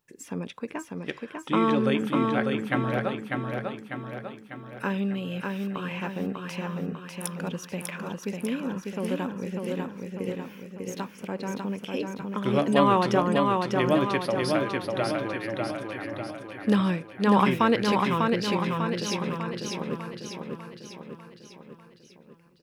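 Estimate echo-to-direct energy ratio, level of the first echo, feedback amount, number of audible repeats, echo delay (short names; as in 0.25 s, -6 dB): -2.0 dB, -3.5 dB, 54%, 6, 0.597 s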